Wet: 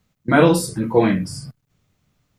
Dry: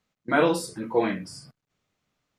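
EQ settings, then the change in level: low shelf 88 Hz +12 dB; bell 120 Hz +8 dB 2.1 oct; high shelf 9500 Hz +9.5 dB; +5.0 dB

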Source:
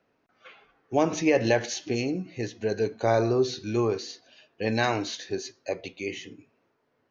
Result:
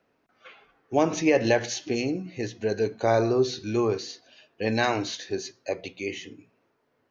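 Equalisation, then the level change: notches 60/120/180 Hz; +1.0 dB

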